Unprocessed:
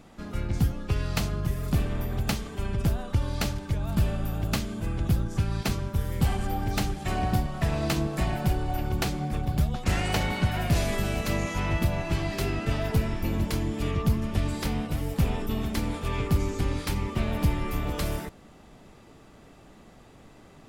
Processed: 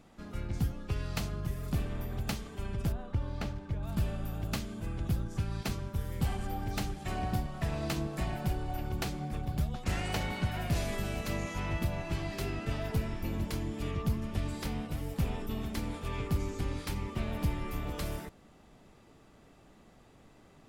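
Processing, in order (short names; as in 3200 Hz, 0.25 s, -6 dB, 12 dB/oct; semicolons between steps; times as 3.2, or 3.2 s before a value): 2.92–3.83 LPF 1900 Hz 6 dB/oct; gain -7 dB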